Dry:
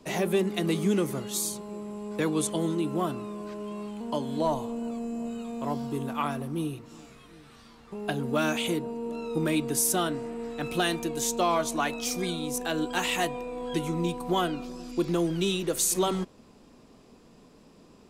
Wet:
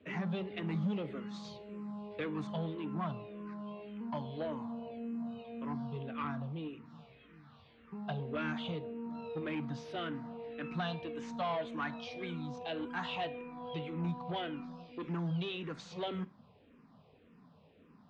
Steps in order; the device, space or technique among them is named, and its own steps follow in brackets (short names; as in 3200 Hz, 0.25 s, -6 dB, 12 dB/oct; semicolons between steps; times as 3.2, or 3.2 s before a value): 1.44–2.26 high shelf 5100 Hz +8 dB; barber-pole phaser into a guitar amplifier (endless phaser -1.8 Hz; soft clip -25.5 dBFS, distortion -14 dB; speaker cabinet 79–3500 Hz, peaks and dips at 91 Hz +8 dB, 160 Hz +5 dB, 350 Hz -8 dB); Schroeder reverb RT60 0.35 s, combs from 31 ms, DRR 19 dB; gain -4 dB